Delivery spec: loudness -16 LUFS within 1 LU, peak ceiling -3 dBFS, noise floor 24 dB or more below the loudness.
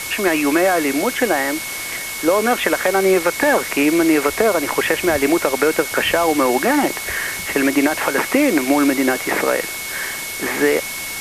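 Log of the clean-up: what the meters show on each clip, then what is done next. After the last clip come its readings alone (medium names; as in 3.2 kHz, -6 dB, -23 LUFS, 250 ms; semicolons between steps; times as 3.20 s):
steady tone 2.2 kHz; tone level -29 dBFS; noise floor -27 dBFS; noise floor target -42 dBFS; loudness -17.5 LUFS; peak level -3.5 dBFS; loudness target -16.0 LUFS
-> band-stop 2.2 kHz, Q 30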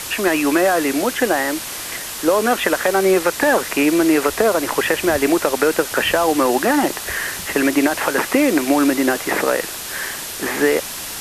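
steady tone not found; noise floor -29 dBFS; noise floor target -42 dBFS
-> noise print and reduce 13 dB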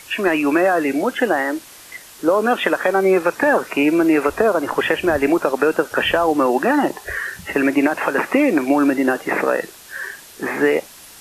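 noise floor -42 dBFS; loudness -18.0 LUFS; peak level -4.0 dBFS; loudness target -16.0 LUFS
-> trim +2 dB; peak limiter -3 dBFS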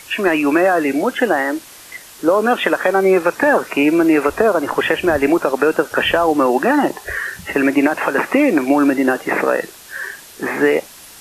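loudness -16.0 LUFS; peak level -3.0 dBFS; noise floor -40 dBFS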